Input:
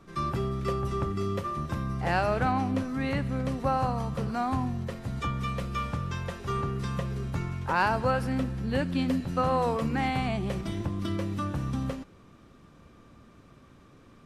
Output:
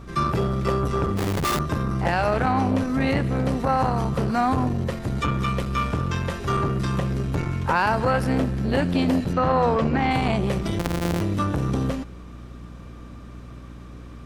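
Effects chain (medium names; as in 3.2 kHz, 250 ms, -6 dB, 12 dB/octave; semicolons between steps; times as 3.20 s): 10.79–11.21 s: sorted samples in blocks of 256 samples; hum 60 Hz, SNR 20 dB; 1.17–1.59 s: Schmitt trigger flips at -35 dBFS; 9.33–10.11 s: distance through air 110 m; loudness maximiser +18 dB; transformer saturation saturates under 330 Hz; trim -8.5 dB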